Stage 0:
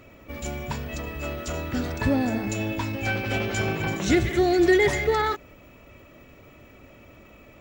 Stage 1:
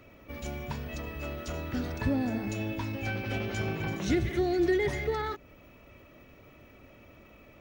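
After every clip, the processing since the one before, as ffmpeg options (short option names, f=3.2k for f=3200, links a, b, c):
-filter_complex "[0:a]bandreject=f=7.4k:w=5.2,acrossover=split=350[a][b];[b]acompressor=threshold=-36dB:ratio=1.5[c];[a][c]amix=inputs=2:normalize=0,volume=-4.5dB"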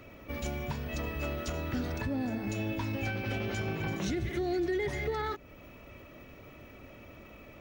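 -af "alimiter=level_in=3.5dB:limit=-24dB:level=0:latency=1:release=367,volume=-3.5dB,volume=3.5dB"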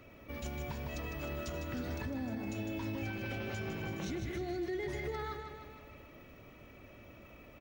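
-af "aecho=1:1:154|308|462|616|770|924|1078:0.398|0.227|0.129|0.0737|0.042|0.024|0.0137,alimiter=level_in=1dB:limit=-24dB:level=0:latency=1:release=62,volume=-1dB,volume=-5dB"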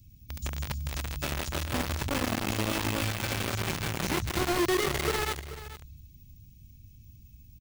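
-filter_complex "[0:a]acrossover=split=160|5000[a][b][c];[b]acrusher=bits=5:mix=0:aa=0.000001[d];[a][d][c]amix=inputs=3:normalize=0,aecho=1:1:433:0.188,volume=8.5dB"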